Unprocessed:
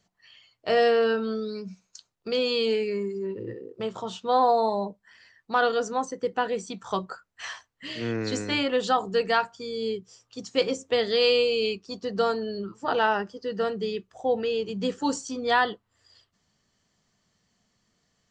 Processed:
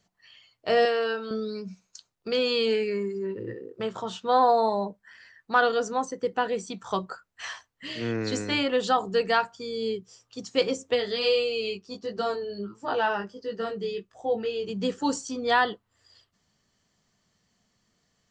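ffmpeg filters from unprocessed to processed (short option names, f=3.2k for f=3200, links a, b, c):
-filter_complex "[0:a]asettb=1/sr,asplit=3[a][b][c];[a]atrim=end=0.854[d];[b]atrim=start=0.85:end=1.31,asetpts=PTS-STARTPTS,afade=t=in:d=0.004:c=qsin,afade=t=out:st=0.456:d=0.004:c=qsin,highpass=f=680:p=1[e];[c]atrim=start=1.306[f];[d][e]acrossfade=d=0.004:c1=hsin:c2=qsin[g];[g][f]acrossfade=d=0.004:c1=qsin:c2=hsin,asettb=1/sr,asplit=3[h][i][j];[h]atrim=end=2.314[k];[i]atrim=start=2.31:end=5.6,asetpts=PTS-STARTPTS,afade=t=in:d=0.004:c=qsin,afade=t=out:st=3.286:d=0.004:c=qsin,equalizer=f=1.6k:t=o:w=0.68:g=6[l];[j]atrim=start=5.596[m];[k][l]acrossfade=d=0.004:c1=hsin:c2=qsin[n];[n][m]acrossfade=d=0.004:c1=qsin:c2=hsin,asplit=3[o][p][q];[o]afade=t=out:st=10.94:d=0.02[r];[p]flanger=delay=18:depth=2.7:speed=1.4,afade=t=in:st=10.94:d=0.02,afade=t=out:st=14.66:d=0.02[s];[q]afade=t=in:st=14.66:d=0.02[t];[r][s][t]amix=inputs=3:normalize=0"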